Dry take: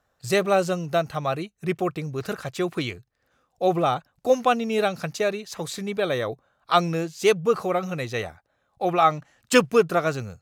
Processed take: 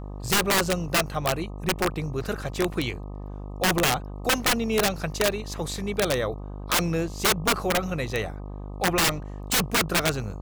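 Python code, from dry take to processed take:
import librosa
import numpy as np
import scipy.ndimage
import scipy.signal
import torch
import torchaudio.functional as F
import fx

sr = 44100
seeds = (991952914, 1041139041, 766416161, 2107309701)

y = fx.dmg_buzz(x, sr, base_hz=50.0, harmonics=25, level_db=-36.0, tilt_db=-6, odd_only=False)
y = (np.mod(10.0 ** (15.5 / 20.0) * y + 1.0, 2.0) - 1.0) / 10.0 ** (15.5 / 20.0)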